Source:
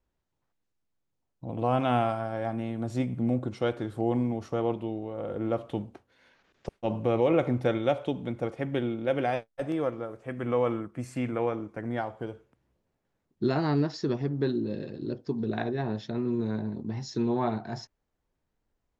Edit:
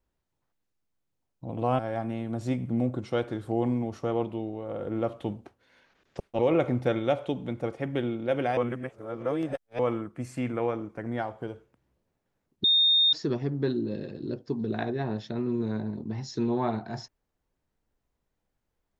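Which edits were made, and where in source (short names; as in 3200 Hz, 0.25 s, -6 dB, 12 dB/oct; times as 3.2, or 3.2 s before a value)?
1.79–2.28 cut
6.88–7.18 cut
9.36–10.58 reverse
13.43–13.92 bleep 3670 Hz -18 dBFS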